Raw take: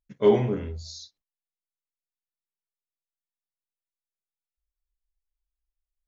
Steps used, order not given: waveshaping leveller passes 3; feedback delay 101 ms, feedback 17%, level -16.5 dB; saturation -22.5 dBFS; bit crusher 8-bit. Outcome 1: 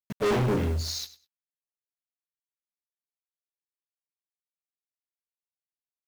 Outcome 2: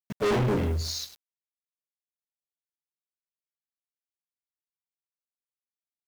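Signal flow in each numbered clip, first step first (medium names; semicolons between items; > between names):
waveshaping leveller > saturation > bit crusher > feedback delay; waveshaping leveller > feedback delay > bit crusher > saturation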